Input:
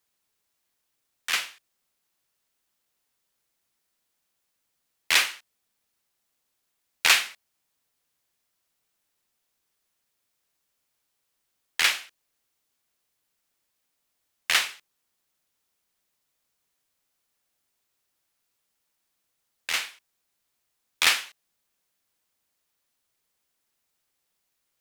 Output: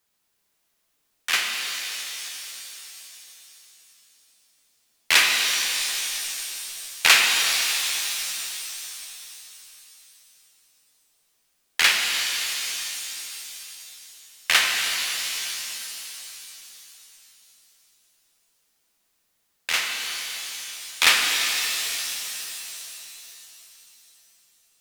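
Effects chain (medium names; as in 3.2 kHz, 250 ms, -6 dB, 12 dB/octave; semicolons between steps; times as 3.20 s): pitch-shifted reverb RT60 3.3 s, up +7 st, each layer -2 dB, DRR 1.5 dB; trim +3 dB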